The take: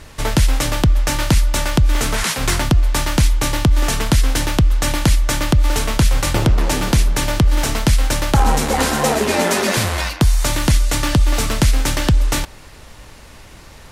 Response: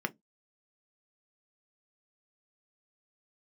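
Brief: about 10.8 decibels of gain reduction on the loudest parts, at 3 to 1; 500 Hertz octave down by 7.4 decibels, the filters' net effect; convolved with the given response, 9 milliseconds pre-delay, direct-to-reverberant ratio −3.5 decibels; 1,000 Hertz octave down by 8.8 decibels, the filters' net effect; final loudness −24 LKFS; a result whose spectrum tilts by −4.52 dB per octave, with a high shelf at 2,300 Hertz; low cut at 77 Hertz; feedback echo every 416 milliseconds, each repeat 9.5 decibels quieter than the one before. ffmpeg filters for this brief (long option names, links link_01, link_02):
-filter_complex "[0:a]highpass=77,equalizer=frequency=500:width_type=o:gain=-7,equalizer=frequency=1000:width_type=o:gain=-8.5,highshelf=frequency=2300:gain=-3.5,acompressor=threshold=-27dB:ratio=3,aecho=1:1:416|832|1248|1664:0.335|0.111|0.0365|0.012,asplit=2[link_01][link_02];[1:a]atrim=start_sample=2205,adelay=9[link_03];[link_02][link_03]afir=irnorm=-1:irlink=0,volume=-1.5dB[link_04];[link_01][link_04]amix=inputs=2:normalize=0"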